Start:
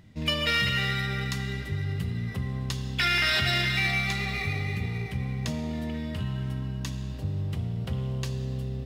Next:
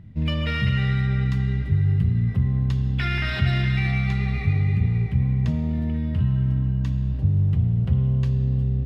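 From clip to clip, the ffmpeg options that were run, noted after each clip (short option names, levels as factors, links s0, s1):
-af "bass=f=250:g=14,treble=f=4000:g=-14,volume=0.75"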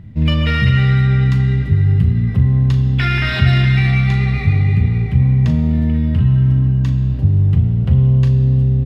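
-filter_complex "[0:a]asplit=2[s0][s1];[s1]adelay=38,volume=0.299[s2];[s0][s2]amix=inputs=2:normalize=0,volume=2.37"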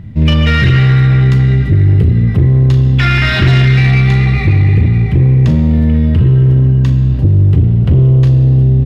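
-af "aeval=exprs='0.891*sin(PI/2*2*val(0)/0.891)':c=same,volume=0.708"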